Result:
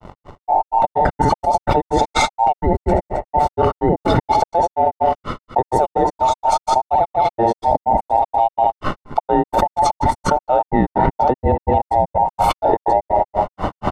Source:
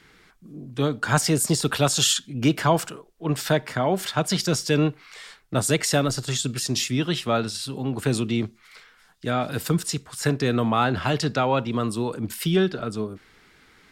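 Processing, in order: band inversion scrambler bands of 1000 Hz; recorder AGC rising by 7.5 dB/s; crossover distortion -49 dBFS; polynomial smoothing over 65 samples; low shelf 270 Hz +10 dB; on a send: feedback echo 79 ms, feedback 40%, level -10 dB; on the sum: grains 0.153 s, grains 4.2/s, pitch spread up and down by 0 st; fast leveller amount 100%; gain -2 dB

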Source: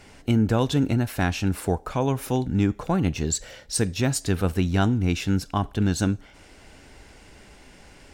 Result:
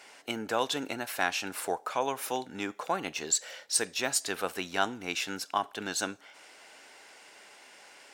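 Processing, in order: HPF 630 Hz 12 dB/oct

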